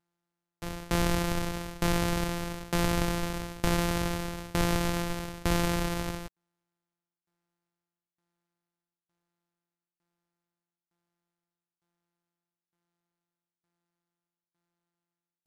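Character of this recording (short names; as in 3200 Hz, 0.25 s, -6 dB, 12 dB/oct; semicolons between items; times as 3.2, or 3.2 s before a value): a buzz of ramps at a fixed pitch in blocks of 256 samples; tremolo saw down 1.1 Hz, depth 95%; MP3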